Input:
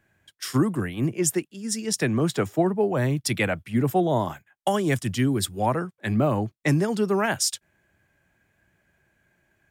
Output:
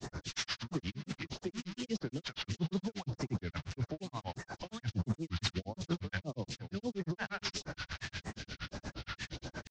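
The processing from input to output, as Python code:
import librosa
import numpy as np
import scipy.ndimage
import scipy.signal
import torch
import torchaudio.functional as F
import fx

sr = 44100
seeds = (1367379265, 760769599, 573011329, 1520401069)

y = fx.delta_mod(x, sr, bps=32000, step_db=-31.0)
y = fx.over_compress(y, sr, threshold_db=-28.0, ratio=-1.0)
y = fx.phaser_stages(y, sr, stages=2, low_hz=350.0, high_hz=3100.0, hz=1.6, feedback_pct=25)
y = y + 10.0 ** (-12.5 / 20.0) * np.pad(y, (int(391 * sr / 1000.0), 0))[:len(y)]
y = fx.granulator(y, sr, seeds[0], grain_ms=100.0, per_s=8.5, spray_ms=100.0, spread_st=3)
y = y * 10.0 ** (-4.0 / 20.0)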